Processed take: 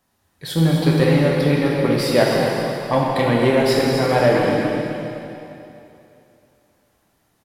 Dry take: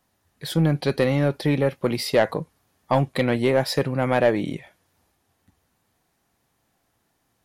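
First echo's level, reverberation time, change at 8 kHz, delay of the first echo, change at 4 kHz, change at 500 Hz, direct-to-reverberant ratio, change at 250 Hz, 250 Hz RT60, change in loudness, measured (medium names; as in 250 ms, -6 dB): -9.0 dB, 2.8 s, +5.0 dB, 256 ms, +5.5 dB, +5.0 dB, -4.0 dB, +6.0 dB, 2.8 s, +4.5 dB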